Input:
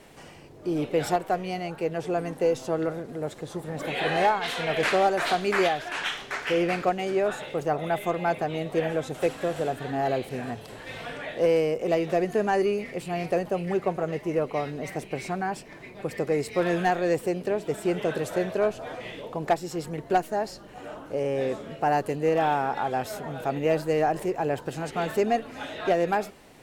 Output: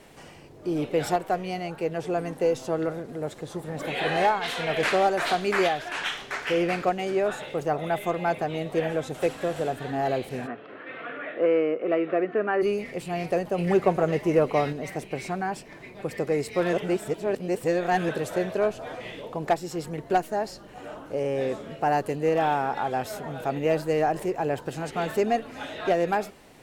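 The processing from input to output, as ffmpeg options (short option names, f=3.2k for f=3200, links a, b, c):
-filter_complex "[0:a]asplit=3[a][b][c];[a]afade=t=out:st=10.46:d=0.02[d];[b]highpass=280,equalizer=f=300:t=q:w=4:g=7,equalizer=f=870:t=q:w=4:g=-8,equalizer=f=1.3k:t=q:w=4:g=9,lowpass=f=2.6k:w=0.5412,lowpass=f=2.6k:w=1.3066,afade=t=in:st=10.46:d=0.02,afade=t=out:st=12.61:d=0.02[e];[c]afade=t=in:st=12.61:d=0.02[f];[d][e][f]amix=inputs=3:normalize=0,asettb=1/sr,asplit=3[g][h][i];[g]atrim=end=13.584[j];[h]atrim=start=13.58:end=14.73,asetpts=PTS-STARTPTS,afade=t=in:d=0.004:c=qsin,afade=t=out:st=1.146:d=0.004:c=qsin,acontrast=29[k];[i]atrim=start=14.726[l];[j][k]acrossfade=d=0.004:c1=hsin:c2=qsin[m];[m][l]acrossfade=d=0.004:c1=qsin:c2=hsin,asplit=3[n][o][p];[n]atrim=end=16.732[q];[o]atrim=start=16.728:end=18.092,asetpts=PTS-STARTPTS,areverse[r];[p]atrim=start=18.088[s];[q][r]acrossfade=d=0.004:c1=hsin:c2=hsin[t];[t][s]acrossfade=d=0.004:c1=hsin:c2=hsin"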